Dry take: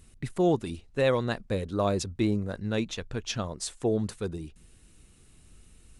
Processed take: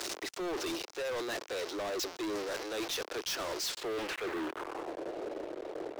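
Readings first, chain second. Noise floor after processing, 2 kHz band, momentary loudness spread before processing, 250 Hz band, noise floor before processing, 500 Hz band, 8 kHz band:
-52 dBFS, -0.5 dB, 10 LU, -9.5 dB, -58 dBFS, -6.5 dB, 0.0 dB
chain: zero-crossing step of -34 dBFS; steep high-pass 310 Hz 72 dB/oct; reverse; compressor 6:1, threshold -37 dBFS, peak gain reduction 16 dB; reverse; low-pass sweep 5500 Hz -> 590 Hz, 3.64–5.06; sample leveller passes 5; soft clip -26 dBFS, distortion -19 dB; gain -6 dB

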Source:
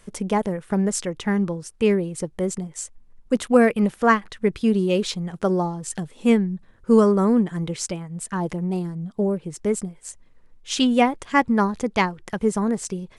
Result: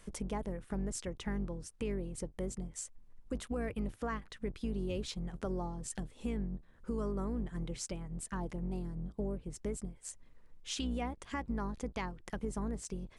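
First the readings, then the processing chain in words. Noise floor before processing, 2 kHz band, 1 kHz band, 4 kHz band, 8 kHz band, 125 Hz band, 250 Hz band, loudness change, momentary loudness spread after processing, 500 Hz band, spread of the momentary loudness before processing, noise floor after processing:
-52 dBFS, -20.0 dB, -20.0 dB, -15.0 dB, -12.5 dB, -12.5 dB, -18.0 dB, -17.5 dB, 6 LU, -19.0 dB, 12 LU, -60 dBFS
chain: octaver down 2 oct, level 0 dB; limiter -12 dBFS, peak gain reduction 9 dB; compressor 2:1, threshold -38 dBFS, peak gain reduction 12 dB; gain -5 dB

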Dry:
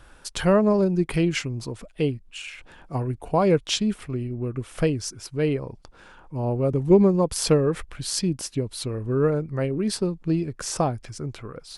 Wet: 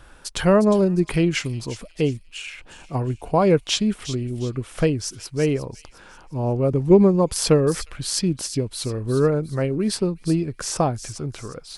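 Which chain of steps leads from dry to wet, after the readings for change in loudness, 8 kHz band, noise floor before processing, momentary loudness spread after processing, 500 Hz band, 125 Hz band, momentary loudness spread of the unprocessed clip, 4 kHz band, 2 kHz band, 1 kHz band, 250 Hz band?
+2.5 dB, +3.0 dB, -51 dBFS, 15 LU, +2.5 dB, +2.5 dB, 15 LU, +3.0 dB, +2.5 dB, +2.5 dB, +2.5 dB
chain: thin delay 0.357 s, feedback 38%, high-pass 4000 Hz, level -8.5 dB; gain +2.5 dB

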